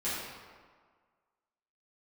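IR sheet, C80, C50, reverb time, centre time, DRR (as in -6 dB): 0.5 dB, -1.5 dB, 1.7 s, 102 ms, -12.5 dB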